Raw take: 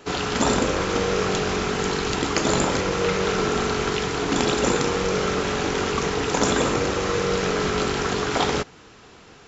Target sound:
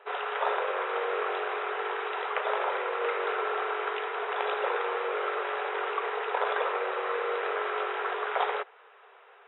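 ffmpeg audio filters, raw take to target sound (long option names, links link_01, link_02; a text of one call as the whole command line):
ffmpeg -i in.wav -filter_complex "[0:a]acrossover=split=470 2400:gain=0.158 1 0.141[link_01][link_02][link_03];[link_01][link_02][link_03]amix=inputs=3:normalize=0,aeval=exprs='val(0)+0.00316*(sin(2*PI*50*n/s)+sin(2*PI*2*50*n/s)/2+sin(2*PI*3*50*n/s)/3+sin(2*PI*4*50*n/s)/4+sin(2*PI*5*50*n/s)/5)':channel_layout=same,afftfilt=real='re*between(b*sr/4096,370,3900)':imag='im*between(b*sr/4096,370,3900)':win_size=4096:overlap=0.75,volume=-2.5dB" out.wav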